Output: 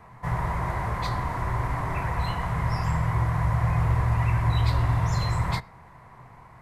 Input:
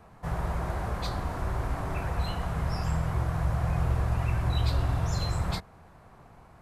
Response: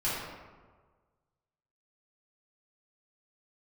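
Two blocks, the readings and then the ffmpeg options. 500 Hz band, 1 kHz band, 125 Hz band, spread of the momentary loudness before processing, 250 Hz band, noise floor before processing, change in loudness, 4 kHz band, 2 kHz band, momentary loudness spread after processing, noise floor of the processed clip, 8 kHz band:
+1.0 dB, +6.5 dB, +5.0 dB, 5 LU, +2.5 dB, −54 dBFS, +4.0 dB, +0.5 dB, +6.5 dB, 5 LU, −50 dBFS, can't be measured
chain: -filter_complex "[0:a]equalizer=frequency=125:width_type=o:width=0.33:gain=10,equalizer=frequency=1000:width_type=o:width=0.33:gain=11,equalizer=frequency=2000:width_type=o:width=0.33:gain=12,asplit=2[link_01][link_02];[1:a]atrim=start_sample=2205,atrim=end_sample=6174[link_03];[link_02][link_03]afir=irnorm=-1:irlink=0,volume=-29dB[link_04];[link_01][link_04]amix=inputs=2:normalize=0"

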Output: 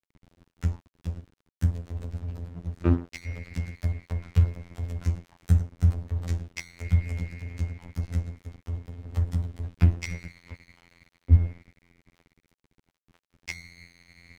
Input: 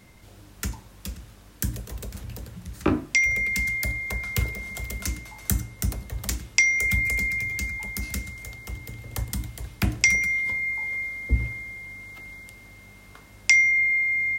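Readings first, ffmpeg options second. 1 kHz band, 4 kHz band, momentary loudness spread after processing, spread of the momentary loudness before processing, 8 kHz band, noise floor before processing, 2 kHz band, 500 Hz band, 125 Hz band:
−7.0 dB, −14.0 dB, 15 LU, 19 LU, −19.5 dB, −50 dBFS, −23.0 dB, −3.0 dB, +6.5 dB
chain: -af "afftfilt=real='hypot(re,im)*cos(PI*b)':imag='0':win_size=2048:overlap=0.75,aemphasis=mode=reproduction:type=riaa,aeval=exprs='sgn(val(0))*max(abs(val(0))-0.015,0)':channel_layout=same,volume=-3.5dB"

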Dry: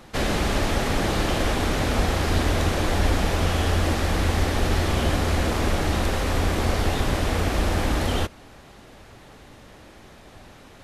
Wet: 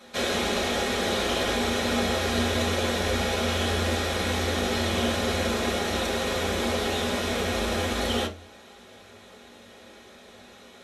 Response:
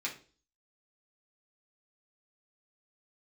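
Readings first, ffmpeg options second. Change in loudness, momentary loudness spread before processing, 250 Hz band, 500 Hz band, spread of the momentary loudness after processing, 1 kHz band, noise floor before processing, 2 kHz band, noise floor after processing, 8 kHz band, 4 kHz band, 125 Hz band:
−2.0 dB, 2 LU, −2.0 dB, 0.0 dB, 2 LU, −2.5 dB, −48 dBFS, −0.5 dB, −50 dBFS, +0.5 dB, +2.5 dB, −8.5 dB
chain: -filter_complex "[1:a]atrim=start_sample=2205,asetrate=70560,aresample=44100[link_01];[0:a][link_01]afir=irnorm=-1:irlink=0,volume=2dB"

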